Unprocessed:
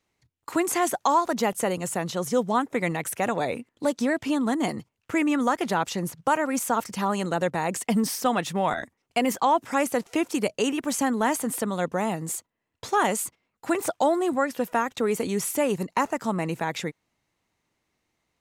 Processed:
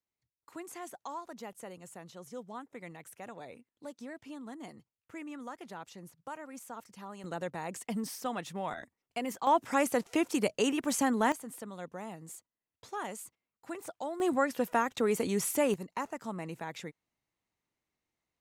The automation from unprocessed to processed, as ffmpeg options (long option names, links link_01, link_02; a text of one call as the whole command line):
ffmpeg -i in.wav -af "asetnsamples=nb_out_samples=441:pad=0,asendcmd='7.24 volume volume -12dB;9.47 volume volume -4dB;11.32 volume volume -16dB;14.2 volume volume -4dB;15.74 volume volume -12dB',volume=-20dB" out.wav